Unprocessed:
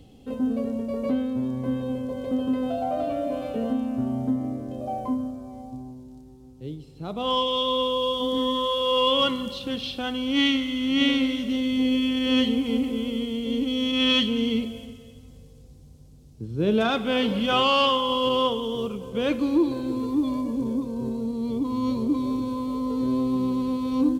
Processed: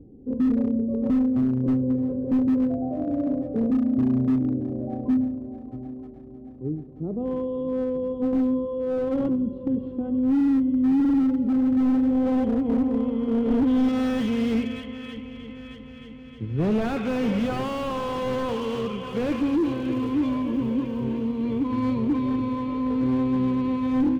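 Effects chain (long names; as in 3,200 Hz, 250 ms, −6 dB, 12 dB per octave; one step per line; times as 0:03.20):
variable-slope delta modulation 64 kbit/s
low-pass filter sweep 360 Hz → 2,300 Hz, 0:11.52–0:14.44
dynamic equaliser 110 Hz, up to +6 dB, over −38 dBFS, Q 0.94
hard clipping −16.5 dBFS, distortion −16 dB
0:13.28–0:13.89: parametric band 370 Hz +8 dB 1.4 octaves
0:19.08–0:20.10: surface crackle 310 per second −34 dBFS
on a send: echo machine with several playback heads 310 ms, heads second and third, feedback 58%, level −19 dB
on the sum: slew-rate limiting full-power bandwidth 36 Hz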